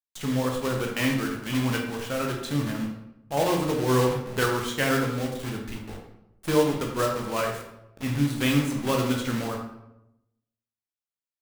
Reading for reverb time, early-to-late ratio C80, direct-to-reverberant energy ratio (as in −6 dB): 0.90 s, 7.0 dB, 0.5 dB